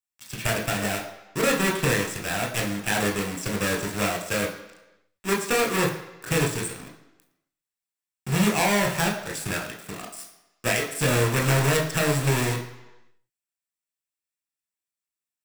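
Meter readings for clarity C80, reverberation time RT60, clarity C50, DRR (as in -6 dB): 11.0 dB, 1.0 s, 8.5 dB, 0.0 dB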